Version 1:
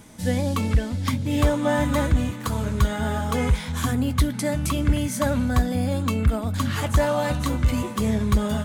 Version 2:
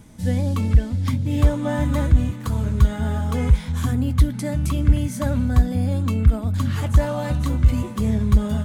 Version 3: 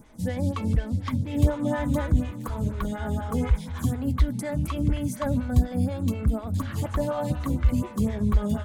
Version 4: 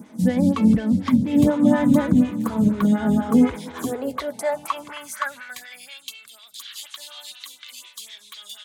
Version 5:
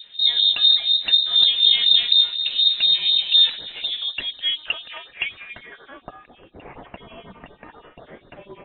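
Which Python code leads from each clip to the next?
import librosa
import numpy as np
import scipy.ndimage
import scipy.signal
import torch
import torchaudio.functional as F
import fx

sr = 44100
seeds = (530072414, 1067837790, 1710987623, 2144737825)

y1 = fx.low_shelf(x, sr, hz=220.0, db=11.5)
y1 = F.gain(torch.from_numpy(y1), -5.0).numpy()
y2 = fx.stagger_phaser(y1, sr, hz=4.1)
y3 = fx.filter_sweep_highpass(y2, sr, from_hz=210.0, to_hz=3500.0, start_s=3.21, end_s=6.18, q=3.1)
y3 = F.gain(torch.from_numpy(y3), 5.0).numpy()
y4 = fx.freq_invert(y3, sr, carrier_hz=3900)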